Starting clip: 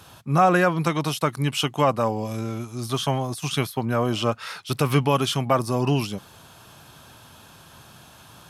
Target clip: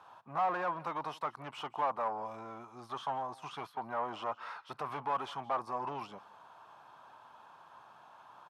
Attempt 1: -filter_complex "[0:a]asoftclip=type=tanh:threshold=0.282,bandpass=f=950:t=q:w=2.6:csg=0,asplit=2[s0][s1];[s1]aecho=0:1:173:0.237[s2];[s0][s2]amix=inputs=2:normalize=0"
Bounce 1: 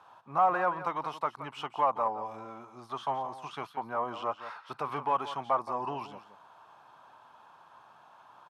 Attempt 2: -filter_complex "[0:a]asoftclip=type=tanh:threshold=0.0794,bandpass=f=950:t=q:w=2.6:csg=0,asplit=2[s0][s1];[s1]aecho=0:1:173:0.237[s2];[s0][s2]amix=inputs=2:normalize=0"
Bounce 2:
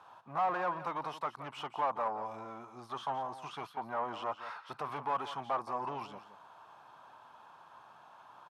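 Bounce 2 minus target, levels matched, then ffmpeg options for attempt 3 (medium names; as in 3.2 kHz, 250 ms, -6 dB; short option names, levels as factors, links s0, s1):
echo-to-direct +9 dB
-filter_complex "[0:a]asoftclip=type=tanh:threshold=0.0794,bandpass=f=950:t=q:w=2.6:csg=0,asplit=2[s0][s1];[s1]aecho=0:1:173:0.0841[s2];[s0][s2]amix=inputs=2:normalize=0"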